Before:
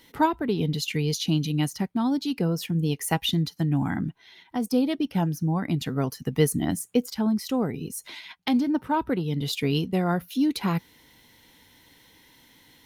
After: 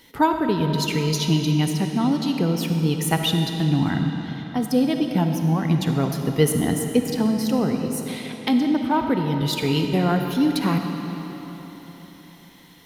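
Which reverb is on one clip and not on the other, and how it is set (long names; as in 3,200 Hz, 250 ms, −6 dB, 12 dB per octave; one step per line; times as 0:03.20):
comb and all-pass reverb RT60 4.1 s, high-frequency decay 0.8×, pre-delay 15 ms, DRR 4 dB
level +3 dB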